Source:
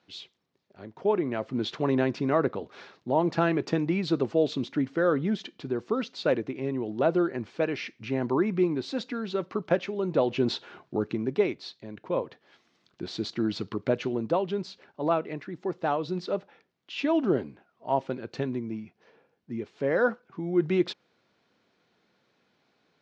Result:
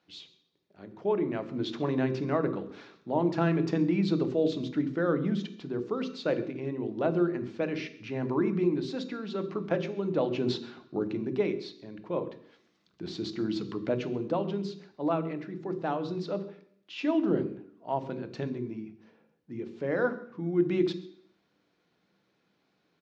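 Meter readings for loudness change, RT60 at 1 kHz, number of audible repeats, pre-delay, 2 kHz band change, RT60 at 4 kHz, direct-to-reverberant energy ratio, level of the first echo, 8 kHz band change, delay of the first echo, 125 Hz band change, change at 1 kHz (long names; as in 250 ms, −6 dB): −2.0 dB, 0.60 s, 1, 3 ms, −4.0 dB, 0.65 s, 9.5 dB, −21.5 dB, can't be measured, 133 ms, 0.0 dB, −4.5 dB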